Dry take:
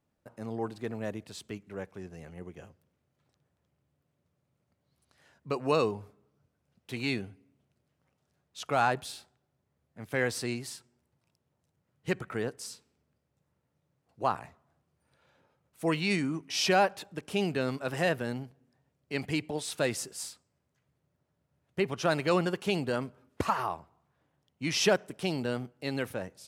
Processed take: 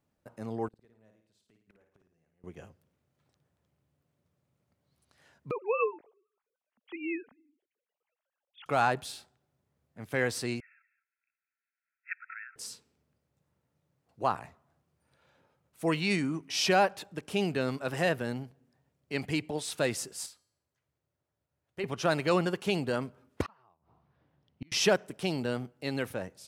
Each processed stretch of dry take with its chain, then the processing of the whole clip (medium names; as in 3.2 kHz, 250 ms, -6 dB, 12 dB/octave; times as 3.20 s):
0.68–2.44 s: inverted gate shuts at -40 dBFS, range -30 dB + flutter echo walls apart 9.4 m, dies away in 0.57 s
5.51–8.66 s: formants replaced by sine waves + LFO notch sine 2.1 Hz 310–1900 Hz
10.60–12.56 s: brick-wall FIR band-pass 1.3–2.7 kHz + distance through air 84 m + delay 206 ms -15 dB
20.26–21.84 s: peaking EQ 180 Hz -7.5 dB 1.1 oct + feedback comb 110 Hz, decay 0.69 s, harmonics odd, mix 50%
23.42–24.72 s: Savitzky-Golay filter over 15 samples + bass shelf 370 Hz +5.5 dB + inverted gate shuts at -28 dBFS, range -34 dB
whole clip: none